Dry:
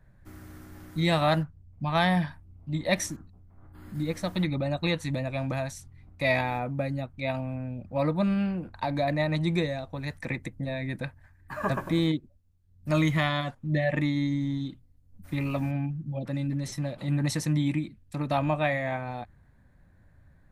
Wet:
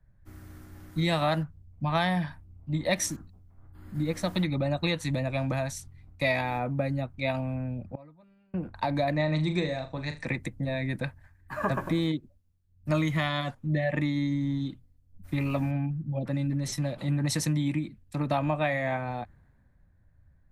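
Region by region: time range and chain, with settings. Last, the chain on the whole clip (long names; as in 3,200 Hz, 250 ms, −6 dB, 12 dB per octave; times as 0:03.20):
0:07.94–0:08.54: comb filter 7.2 ms, depth 51% + gate with flip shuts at −25 dBFS, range −28 dB
0:09.12–0:10.27: elliptic low-pass filter 8,600 Hz + flutter between parallel walls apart 6.7 metres, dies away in 0.27 s
whole clip: downward compressor 4 to 1, threshold −28 dBFS; multiband upward and downward expander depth 40%; level +3.5 dB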